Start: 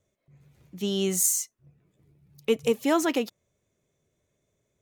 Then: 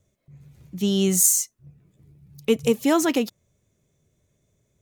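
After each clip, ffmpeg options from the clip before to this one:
ffmpeg -i in.wav -af "bass=frequency=250:gain=8,treble=frequency=4000:gain=4,volume=2dB" out.wav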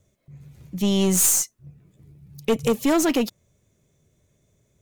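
ffmpeg -i in.wav -af "aeval=exprs='(tanh(7.94*val(0)+0.25)-tanh(0.25))/7.94':channel_layout=same,volume=4dB" out.wav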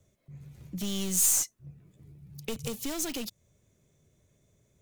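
ffmpeg -i in.wav -filter_complex "[0:a]asplit=2[link_01][link_02];[link_02]aeval=exprs='(mod(15*val(0)+1,2)-1)/15':channel_layout=same,volume=-9.5dB[link_03];[link_01][link_03]amix=inputs=2:normalize=0,acrossover=split=130|3000[link_04][link_05][link_06];[link_05]acompressor=threshold=-32dB:ratio=4[link_07];[link_04][link_07][link_06]amix=inputs=3:normalize=0,volume=-5dB" out.wav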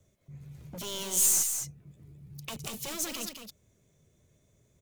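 ffmpeg -i in.wav -filter_complex "[0:a]acrossover=split=1200[link_01][link_02];[link_01]aeval=exprs='0.015*(abs(mod(val(0)/0.015+3,4)-2)-1)':channel_layout=same[link_03];[link_03][link_02]amix=inputs=2:normalize=0,aecho=1:1:210:0.422" out.wav

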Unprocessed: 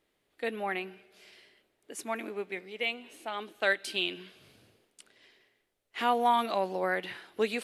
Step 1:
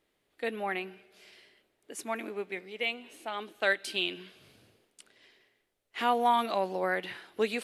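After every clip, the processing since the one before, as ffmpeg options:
ffmpeg -i in.wav -af anull out.wav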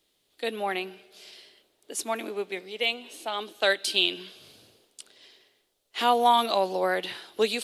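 ffmpeg -i in.wav -filter_complex "[0:a]highshelf=frequency=2700:width_type=q:width=1.5:gain=9,acrossover=split=300|1700[link_01][link_02][link_03];[link_02]dynaudnorm=framelen=310:gausssize=3:maxgain=6dB[link_04];[link_01][link_04][link_03]amix=inputs=3:normalize=0" out.wav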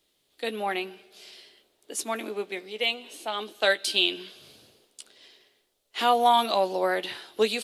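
ffmpeg -i in.wav -filter_complex "[0:a]asplit=2[link_01][link_02];[link_02]adelay=14,volume=-11dB[link_03];[link_01][link_03]amix=inputs=2:normalize=0" out.wav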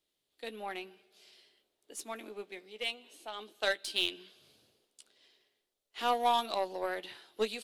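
ffmpeg -i in.wav -af "aeval=exprs='0.422*(cos(1*acos(clip(val(0)/0.422,-1,1)))-cos(1*PI/2))+0.0335*(cos(3*acos(clip(val(0)/0.422,-1,1)))-cos(3*PI/2))+0.00596*(cos(5*acos(clip(val(0)/0.422,-1,1)))-cos(5*PI/2))+0.00668*(cos(6*acos(clip(val(0)/0.422,-1,1)))-cos(6*PI/2))+0.0188*(cos(7*acos(clip(val(0)/0.422,-1,1)))-cos(7*PI/2))':channel_layout=same,volume=-6.5dB" out.wav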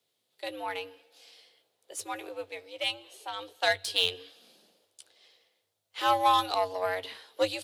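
ffmpeg -i in.wav -af "afreqshift=94,volume=5dB" out.wav

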